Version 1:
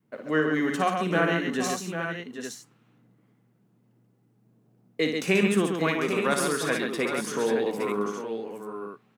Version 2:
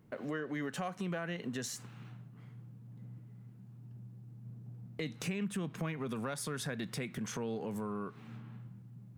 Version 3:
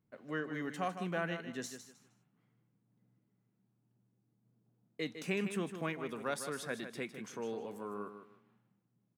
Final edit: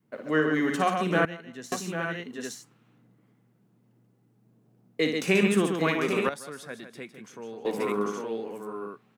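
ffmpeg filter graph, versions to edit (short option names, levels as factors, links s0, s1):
-filter_complex "[2:a]asplit=2[s0][s1];[0:a]asplit=3[s2][s3][s4];[s2]atrim=end=1.252[s5];[s0]atrim=start=1.248:end=1.722[s6];[s3]atrim=start=1.718:end=6.292[s7];[s1]atrim=start=6.288:end=7.652[s8];[s4]atrim=start=7.648[s9];[s5][s6]acrossfade=d=0.004:c1=hsin:c2=hsin[s10];[s10][s7]acrossfade=d=0.004:c1=hsin:c2=hsin[s11];[s11][s8]acrossfade=d=0.004:c1=hsin:c2=hsin[s12];[s12][s9]acrossfade=d=0.004:c1=hsin:c2=hsin"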